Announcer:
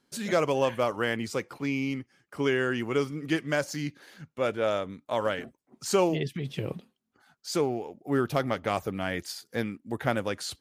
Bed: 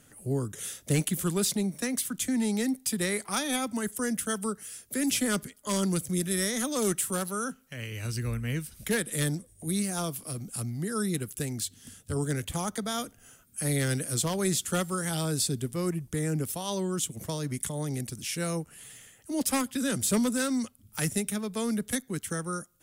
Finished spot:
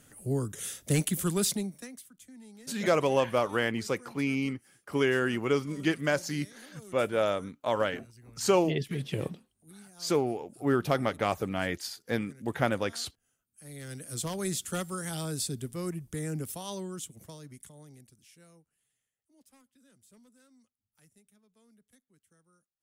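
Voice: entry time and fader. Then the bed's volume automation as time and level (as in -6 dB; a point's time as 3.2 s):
2.55 s, 0.0 dB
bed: 1.51 s -0.5 dB
2.12 s -23 dB
13.5 s -23 dB
14.26 s -5 dB
16.62 s -5 dB
19.12 s -34.5 dB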